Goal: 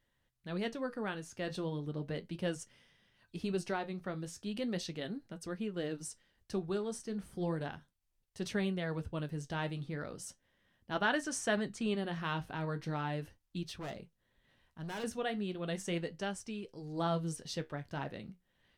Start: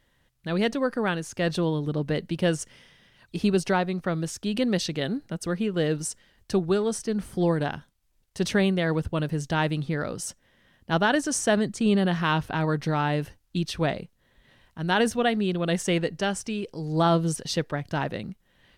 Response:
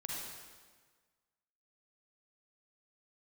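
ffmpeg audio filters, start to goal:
-filter_complex "[0:a]asettb=1/sr,asplit=3[a][b][c];[a]atrim=end=10.954[d];[b]atrim=start=10.95:end=11.95,asetpts=PTS-STARTPTS,afade=t=in:d=0.004:c=qsin,afade=t=out:st=0.996:d=0.004:c=qsin,equalizer=f=1.7k:w=0.49:g=5.5[e];[c]atrim=start=11.946[f];[d][e]acrossfade=d=0.004:c1=hsin:c2=qsin[g];[g][f]acrossfade=d=0.004:c1=qsin:c2=hsin,asettb=1/sr,asplit=3[h][i][j];[h]atrim=end=13.664[k];[i]atrim=start=13.66:end=15.04,asetpts=PTS-STARTPTS,afade=t=in:d=0.004:c=qsin,afade=t=out:st=1.376:d=0.004:c=qsin,volume=26.5dB,asoftclip=hard,volume=-26.5dB[l];[j]atrim=start=15.036[m];[k][l]acrossfade=d=0.004:c1=hsin:c2=qsin[n];[n][m]acrossfade=d=0.004:c1=qsin:c2=hsin,flanger=delay=8.9:depth=5.9:regen=-58:speed=0.36:shape=sinusoidal,volume=-8dB"

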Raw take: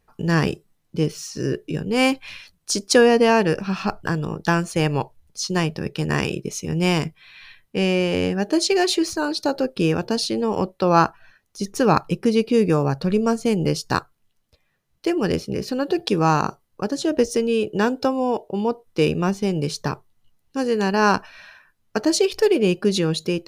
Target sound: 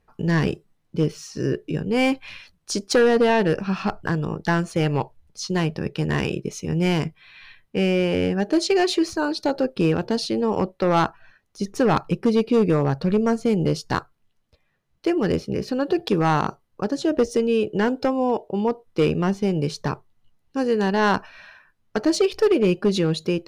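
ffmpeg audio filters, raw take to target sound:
-af "volume=12.5dB,asoftclip=hard,volume=-12.5dB,aemphasis=mode=reproduction:type=cd"

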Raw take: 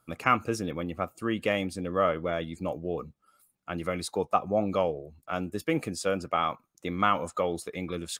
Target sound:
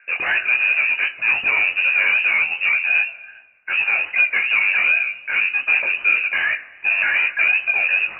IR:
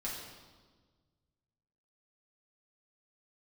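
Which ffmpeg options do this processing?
-filter_complex "[0:a]equalizer=f=440:t=o:w=0.49:g=13.5,asplit=2[a][b];[b]highpass=f=720:p=1,volume=35dB,asoftclip=type=tanh:threshold=-5.5dB[c];[a][c]amix=inputs=2:normalize=0,lowpass=f=1k:p=1,volume=-6dB,lowpass=f=2.5k:t=q:w=0.5098,lowpass=f=2.5k:t=q:w=0.6013,lowpass=f=2.5k:t=q:w=0.9,lowpass=f=2.5k:t=q:w=2.563,afreqshift=-2900,asplit=2[d][e];[1:a]atrim=start_sample=2205[f];[e][f]afir=irnorm=-1:irlink=0,volume=-12dB[g];[d][g]amix=inputs=2:normalize=0,flanger=delay=17.5:depth=5.6:speed=2.6,volume=-2dB"

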